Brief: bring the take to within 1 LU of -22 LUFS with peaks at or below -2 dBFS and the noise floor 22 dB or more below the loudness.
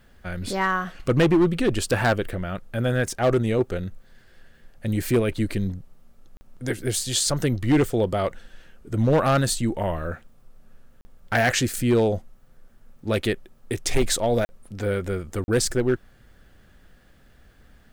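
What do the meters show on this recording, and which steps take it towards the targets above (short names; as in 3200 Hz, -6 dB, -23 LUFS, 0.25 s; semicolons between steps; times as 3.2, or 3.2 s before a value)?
clipped 0.8%; flat tops at -13.5 dBFS; dropouts 4; longest dropout 40 ms; loudness -24.0 LUFS; peak -13.5 dBFS; loudness target -22.0 LUFS
-> clip repair -13.5 dBFS; interpolate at 6.37/11.01/14.45/15.44, 40 ms; gain +2 dB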